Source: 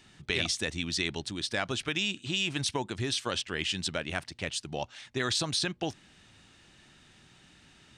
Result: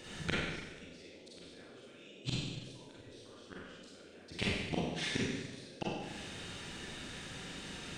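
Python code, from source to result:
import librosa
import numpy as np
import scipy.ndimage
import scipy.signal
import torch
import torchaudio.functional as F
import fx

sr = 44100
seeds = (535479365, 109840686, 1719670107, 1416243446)

y = fx.dynamic_eq(x, sr, hz=450.0, q=1.8, threshold_db=-48.0, ratio=4.0, max_db=-6)
y = fx.gate_flip(y, sr, shuts_db=-25.0, range_db=-38)
y = fx.rev_schroeder(y, sr, rt60_s=1.2, comb_ms=32, drr_db=-7.0)
y = fx.dmg_noise_band(y, sr, seeds[0], low_hz=220.0, high_hz=560.0, level_db=-61.0)
y = F.gain(torch.from_numpy(y), 4.5).numpy()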